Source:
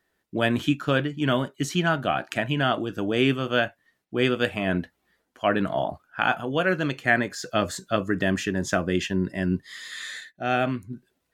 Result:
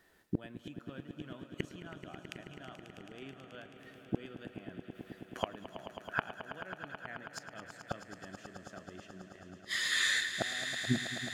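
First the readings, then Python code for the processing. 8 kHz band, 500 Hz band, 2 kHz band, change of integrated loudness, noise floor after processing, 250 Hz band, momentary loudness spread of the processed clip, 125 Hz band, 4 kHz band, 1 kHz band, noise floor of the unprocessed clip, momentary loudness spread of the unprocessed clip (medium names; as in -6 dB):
-4.5 dB, -20.0 dB, -10.5 dB, -12.5 dB, -57 dBFS, -17.0 dB, 18 LU, -16.0 dB, -7.0 dB, -17.5 dB, -75 dBFS, 9 LU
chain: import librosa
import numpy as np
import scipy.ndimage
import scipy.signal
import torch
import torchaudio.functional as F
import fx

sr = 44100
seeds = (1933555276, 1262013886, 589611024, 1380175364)

y = fx.gate_flip(x, sr, shuts_db=-24.0, range_db=-34)
y = fx.echo_swell(y, sr, ms=108, loudest=5, wet_db=-13.0)
y = F.gain(torch.from_numpy(y), 6.0).numpy()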